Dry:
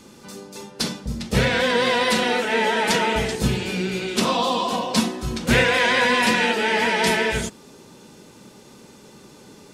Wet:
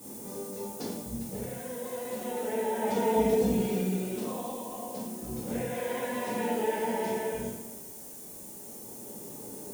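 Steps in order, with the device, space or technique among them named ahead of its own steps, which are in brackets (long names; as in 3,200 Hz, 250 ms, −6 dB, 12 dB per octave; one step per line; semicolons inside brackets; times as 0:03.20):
medium wave at night (band-pass filter 110–3,600 Hz; downward compressor, threshold −27 dBFS, peak gain reduction 13 dB; amplitude tremolo 0.31 Hz, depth 67%; steady tone 9,000 Hz −53 dBFS; white noise bed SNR 14 dB)
flat-topped bell 2,300 Hz −13.5 dB 2.5 octaves
0:02.95–0:03.98: comb filter 4.3 ms, depth 73%
coupled-rooms reverb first 0.71 s, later 2.3 s, DRR −7 dB
level −4.5 dB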